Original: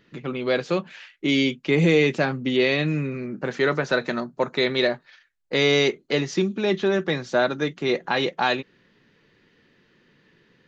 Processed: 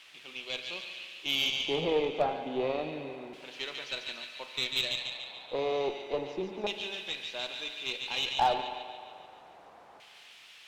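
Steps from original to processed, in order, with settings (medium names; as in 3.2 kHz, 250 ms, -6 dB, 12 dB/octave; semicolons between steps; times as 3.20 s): high-order bell 1.6 kHz -11.5 dB 1 oct; added noise pink -44 dBFS; LFO band-pass square 0.3 Hz 770–2900 Hz; feedback echo behind a high-pass 144 ms, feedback 59%, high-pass 1.7 kHz, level -3.5 dB; spring tank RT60 1.9 s, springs 43 ms, chirp 65 ms, DRR 8 dB; Chebyshev shaper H 4 -20 dB, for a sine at -17.5 dBFS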